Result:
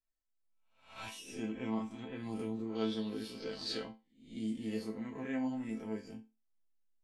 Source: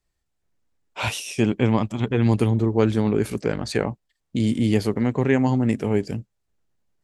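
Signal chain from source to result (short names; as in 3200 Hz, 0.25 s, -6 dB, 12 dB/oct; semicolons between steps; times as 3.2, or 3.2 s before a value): spectral swells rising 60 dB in 0.48 s; 2.75–3.91 band shelf 4000 Hz +14 dB 1.1 oct; resonator bank A3 minor, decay 0.26 s; gain -3.5 dB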